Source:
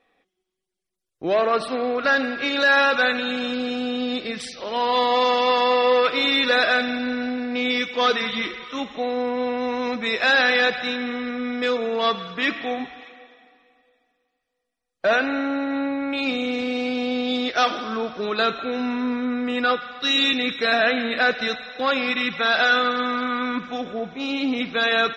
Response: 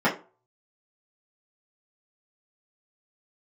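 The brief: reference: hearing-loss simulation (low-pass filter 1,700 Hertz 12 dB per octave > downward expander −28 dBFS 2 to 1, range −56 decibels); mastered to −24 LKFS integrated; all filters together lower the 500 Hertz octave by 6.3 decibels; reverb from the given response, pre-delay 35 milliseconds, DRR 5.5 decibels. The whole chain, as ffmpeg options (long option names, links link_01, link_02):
-filter_complex "[0:a]equalizer=frequency=500:width_type=o:gain=-7,asplit=2[link_01][link_02];[1:a]atrim=start_sample=2205,adelay=35[link_03];[link_02][link_03]afir=irnorm=-1:irlink=0,volume=-22dB[link_04];[link_01][link_04]amix=inputs=2:normalize=0,lowpass=1700,agate=range=-56dB:threshold=-28dB:ratio=2,volume=1dB"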